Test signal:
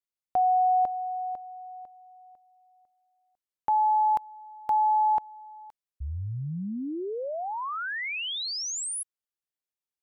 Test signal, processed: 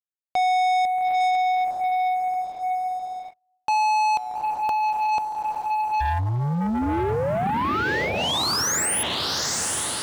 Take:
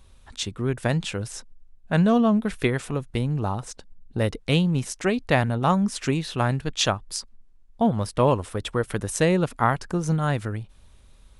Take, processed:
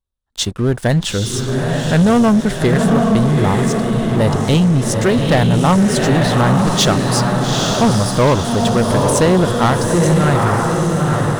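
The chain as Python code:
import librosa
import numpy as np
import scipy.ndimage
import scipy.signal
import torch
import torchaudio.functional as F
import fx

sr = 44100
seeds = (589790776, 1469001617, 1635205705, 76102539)

y = fx.echo_diffused(x, sr, ms=855, feedback_pct=51, wet_db=-3.5)
y = fx.gate_hold(y, sr, open_db=-29.0, close_db=-36.0, hold_ms=341.0, range_db=-25, attack_ms=0.11, release_ms=116.0)
y = fx.peak_eq(y, sr, hz=2400.0, db=-10.0, octaves=0.32)
y = fx.leveller(y, sr, passes=3)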